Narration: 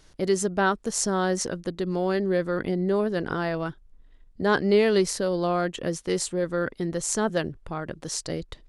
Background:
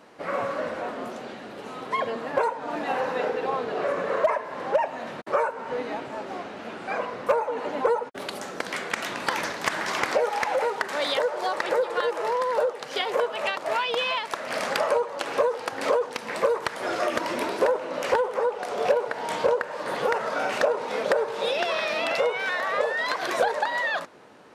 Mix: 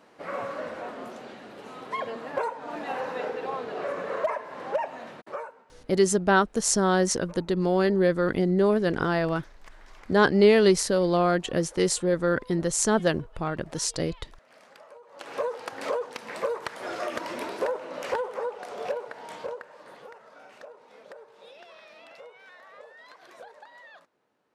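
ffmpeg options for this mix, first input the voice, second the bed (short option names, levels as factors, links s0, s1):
-filter_complex "[0:a]adelay=5700,volume=1.33[s0];[1:a]volume=5.96,afade=t=out:st=4.93:d=0.73:silence=0.0841395,afade=t=in:st=15.02:d=0.44:silence=0.0944061,afade=t=out:st=18.3:d=1.84:silence=0.133352[s1];[s0][s1]amix=inputs=2:normalize=0"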